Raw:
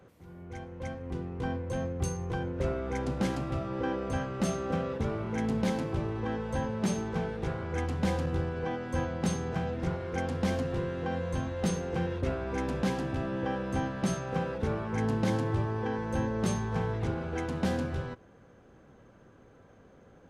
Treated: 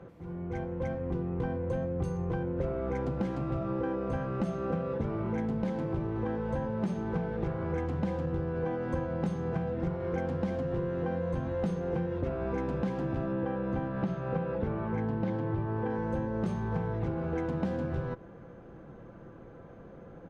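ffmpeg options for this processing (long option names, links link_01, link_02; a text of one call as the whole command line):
ffmpeg -i in.wav -filter_complex "[0:a]asettb=1/sr,asplit=3[link_01][link_02][link_03];[link_01]atrim=end=13.324[link_04];[link_02]atrim=start=13.32:end=15.9,asetpts=PTS-STARTPTS,afade=type=in:duration=0.004:curve=qsin,afade=type=out:start_time=2.576:duration=0.004:curve=qsin,lowpass=4200[link_05];[link_03]atrim=start=15.896[link_06];[link_04][link_05]acrossfade=duration=0.004:curve1=hsin:curve2=qsin[link_07];[link_07][link_06]acrossfade=duration=0.004:curve1=qsin:curve2=hsin,lowpass=frequency=1100:poles=1,aecho=1:1:5.9:0.32,acompressor=threshold=-37dB:ratio=6,volume=8dB" out.wav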